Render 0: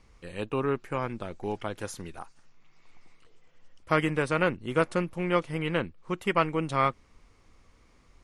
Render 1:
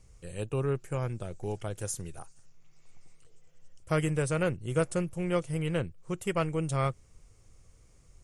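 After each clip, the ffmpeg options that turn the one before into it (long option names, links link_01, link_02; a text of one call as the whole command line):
ffmpeg -i in.wav -af "equalizer=frequency=125:width_type=o:width=1:gain=6,equalizer=frequency=250:width_type=o:width=1:gain=-10,equalizer=frequency=1000:width_type=o:width=1:gain=-10,equalizer=frequency=2000:width_type=o:width=1:gain=-7,equalizer=frequency=4000:width_type=o:width=1:gain=-8,equalizer=frequency=8000:width_type=o:width=1:gain=9,volume=2dB" out.wav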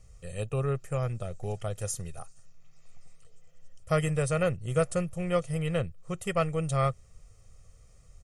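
ffmpeg -i in.wav -af "aecho=1:1:1.6:0.59" out.wav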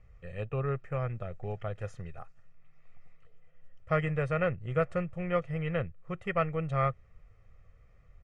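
ffmpeg -i in.wav -af "lowpass=frequency=2000:width_type=q:width=1.8,volume=-3dB" out.wav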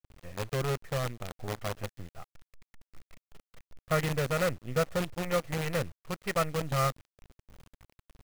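ffmpeg -i in.wav -af "acrusher=bits=6:dc=4:mix=0:aa=0.000001" out.wav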